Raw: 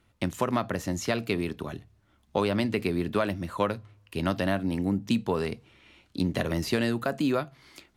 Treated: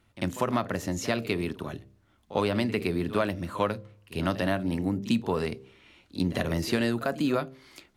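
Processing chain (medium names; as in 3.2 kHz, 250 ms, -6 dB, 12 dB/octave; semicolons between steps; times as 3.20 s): de-hum 65.79 Hz, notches 9; pre-echo 48 ms -16 dB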